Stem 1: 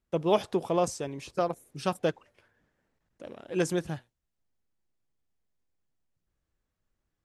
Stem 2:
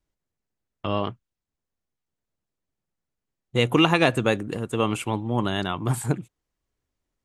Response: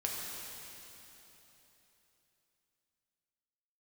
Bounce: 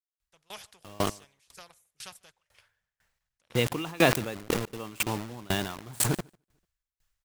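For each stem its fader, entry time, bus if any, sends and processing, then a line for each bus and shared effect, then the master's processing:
−2.0 dB, 0.20 s, no send, echo send −21.5 dB, guitar amp tone stack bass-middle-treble 10-0-10; every bin compressed towards the loudest bin 2 to 1
+0.5 dB, 0.00 s, no send, echo send −20.5 dB, bit reduction 5 bits; level that may fall only so fast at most 29 dB per second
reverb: not used
echo: repeating echo 148 ms, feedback 19%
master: tremolo with a ramp in dB decaying 2 Hz, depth 28 dB

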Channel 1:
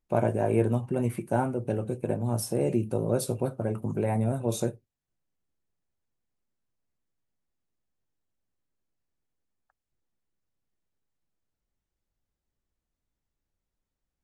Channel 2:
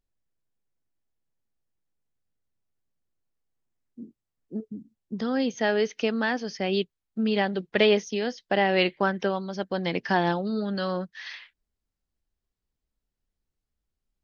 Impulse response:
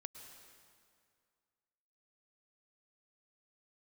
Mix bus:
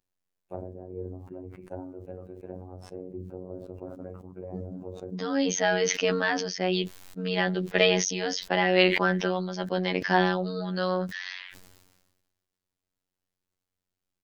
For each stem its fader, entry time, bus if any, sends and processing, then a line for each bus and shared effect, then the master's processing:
−6.0 dB, 0.40 s, no send, treble cut that deepens with the level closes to 400 Hz, closed at −21.5 dBFS; expander for the loud parts 1.5 to 1, over −37 dBFS
+3.0 dB, 0.00 s, no send, no processing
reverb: not used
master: low-shelf EQ 160 Hz −9 dB; phases set to zero 91.7 Hz; level that may fall only so fast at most 43 dB per second

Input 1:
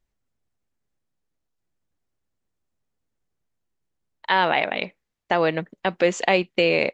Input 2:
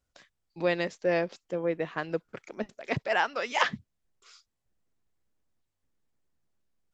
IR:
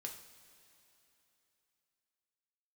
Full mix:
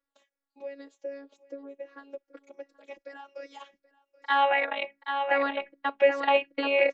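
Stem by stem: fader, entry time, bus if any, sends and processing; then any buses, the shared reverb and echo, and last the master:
+3.0 dB, 0.00 s, no send, echo send −6.5 dB, three-way crossover with the lows and the highs turned down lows −22 dB, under 380 Hz, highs −22 dB, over 3,100 Hz; mains-hum notches 60/120/180/240/300 Hz
−6.5 dB, 0.00 s, no send, echo send −21.5 dB, downward compressor 12 to 1, threshold −32 dBFS, peak gain reduction 14 dB; high-pass with resonance 410 Hz, resonance Q 4.9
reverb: not used
echo: single-tap delay 779 ms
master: phases set to zero 279 Hz; barber-pole flanger 3.7 ms −2.6 Hz

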